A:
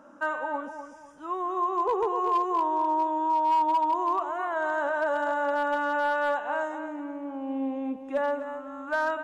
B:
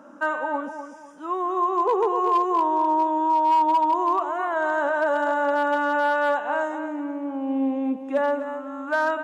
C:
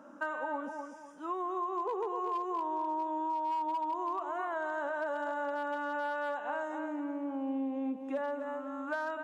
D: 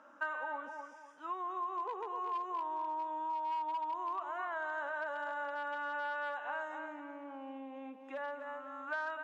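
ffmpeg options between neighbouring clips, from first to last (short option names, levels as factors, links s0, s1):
-af "lowshelf=f=140:t=q:w=1.5:g=-13,volume=1.58"
-af "acompressor=threshold=0.0501:ratio=5,volume=0.501"
-af "bandpass=f=2100:t=q:w=0.7:csg=0,volume=1.12"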